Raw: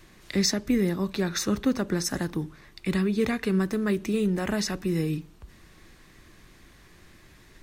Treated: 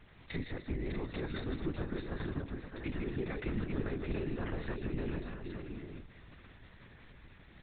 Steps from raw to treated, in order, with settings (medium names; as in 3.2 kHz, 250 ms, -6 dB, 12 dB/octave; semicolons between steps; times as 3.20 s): compression 3:1, threshold -32 dBFS, peak gain reduction 10 dB; on a send: multi-tap echo 161/607/846 ms -5.5/-6.5/-8 dB; on the sum: LPC vocoder at 8 kHz whisper; trim -5 dB